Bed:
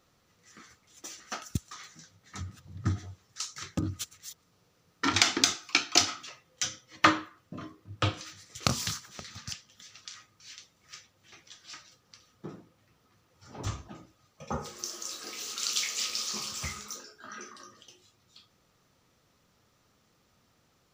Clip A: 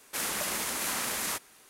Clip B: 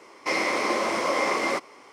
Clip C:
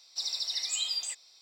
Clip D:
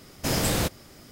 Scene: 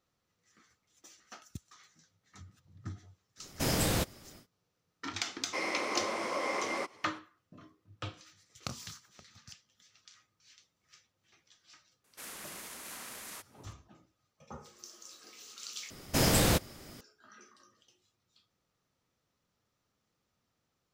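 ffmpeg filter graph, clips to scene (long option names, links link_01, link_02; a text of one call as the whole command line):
ffmpeg -i bed.wav -i cue0.wav -i cue1.wav -i cue2.wav -i cue3.wav -filter_complex "[4:a]asplit=2[link_01][link_02];[0:a]volume=-13dB[link_03];[1:a]bandreject=frequency=860:width=24[link_04];[link_03]asplit=2[link_05][link_06];[link_05]atrim=end=15.904[link_07];[link_02]atrim=end=1.11,asetpts=PTS-STARTPTS,volume=-1dB[link_08];[link_06]atrim=start=17.006[link_09];[link_01]atrim=end=1.11,asetpts=PTS-STARTPTS,volume=-5dB,afade=type=in:duration=0.1,afade=type=out:start_time=1.01:duration=0.1,adelay=3360[link_10];[2:a]atrim=end=1.92,asetpts=PTS-STARTPTS,volume=-9.5dB,afade=type=in:duration=0.004:curve=hsin,afade=type=out:start_time=1.916:duration=0.004:curve=hsin,adelay=5270[link_11];[link_04]atrim=end=1.69,asetpts=PTS-STARTPTS,volume=-13.5dB,afade=type=in:duration=0.004:curve=hsin,afade=type=out:start_time=1.686:duration=0.004:curve=hsin,adelay=12040[link_12];[link_07][link_08]acrossfade=duration=0.004:curve1=hsin:curve2=hsin[link_13];[link_13][link_09]acrossfade=duration=0.004:curve1=hsin:curve2=hsin[link_14];[link_14][link_10][link_11][link_12]amix=inputs=4:normalize=0" out.wav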